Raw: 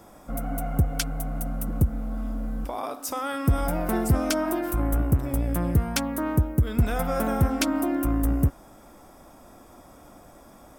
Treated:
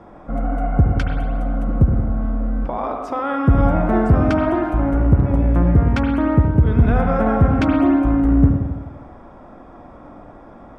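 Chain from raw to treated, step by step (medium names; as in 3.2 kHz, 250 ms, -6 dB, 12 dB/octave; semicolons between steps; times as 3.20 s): low-pass 1.8 kHz 12 dB/octave; on a send: reverberation RT60 1.2 s, pre-delay 68 ms, DRR 3 dB; on the sum: trim +7 dB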